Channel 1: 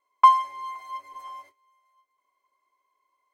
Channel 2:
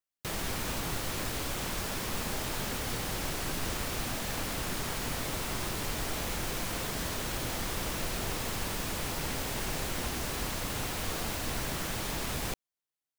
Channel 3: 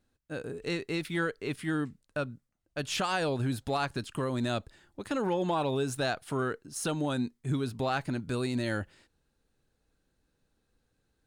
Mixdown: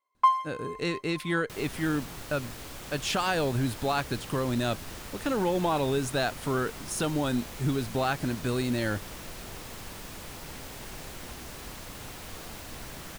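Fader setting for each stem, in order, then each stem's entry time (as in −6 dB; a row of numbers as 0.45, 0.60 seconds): −6.5, −7.5, +2.5 decibels; 0.00, 1.25, 0.15 seconds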